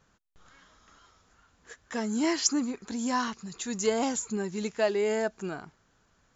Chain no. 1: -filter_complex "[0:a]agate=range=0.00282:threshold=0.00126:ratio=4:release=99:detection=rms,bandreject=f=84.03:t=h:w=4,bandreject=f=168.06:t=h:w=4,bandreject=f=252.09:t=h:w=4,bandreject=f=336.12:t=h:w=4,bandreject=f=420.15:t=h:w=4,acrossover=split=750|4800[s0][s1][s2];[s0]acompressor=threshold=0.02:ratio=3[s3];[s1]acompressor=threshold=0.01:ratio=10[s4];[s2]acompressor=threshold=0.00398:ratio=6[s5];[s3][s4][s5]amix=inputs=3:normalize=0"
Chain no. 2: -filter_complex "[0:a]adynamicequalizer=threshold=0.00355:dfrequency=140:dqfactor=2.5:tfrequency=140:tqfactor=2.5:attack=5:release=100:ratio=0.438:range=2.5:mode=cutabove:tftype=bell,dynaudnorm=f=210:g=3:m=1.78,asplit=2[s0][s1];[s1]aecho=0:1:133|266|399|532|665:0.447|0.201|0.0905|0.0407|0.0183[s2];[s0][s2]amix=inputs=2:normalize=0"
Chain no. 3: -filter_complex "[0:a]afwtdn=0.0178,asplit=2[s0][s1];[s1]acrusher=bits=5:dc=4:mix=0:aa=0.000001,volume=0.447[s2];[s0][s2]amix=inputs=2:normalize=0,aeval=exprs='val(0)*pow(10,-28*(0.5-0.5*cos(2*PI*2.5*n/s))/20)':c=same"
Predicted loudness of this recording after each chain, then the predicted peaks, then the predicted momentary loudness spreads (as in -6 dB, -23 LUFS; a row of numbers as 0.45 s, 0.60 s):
-36.0 LUFS, -24.0 LUFS, -32.5 LUFS; -20.5 dBFS, -5.0 dBFS, -13.0 dBFS; 7 LU, 9 LU, 20 LU